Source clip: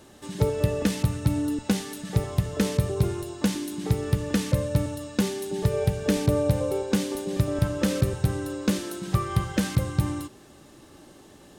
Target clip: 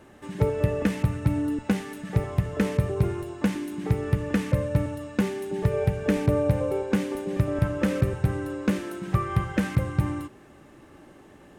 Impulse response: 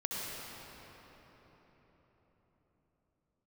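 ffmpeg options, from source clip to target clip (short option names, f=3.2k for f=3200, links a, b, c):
-af "highshelf=f=3k:t=q:w=1.5:g=-8.5"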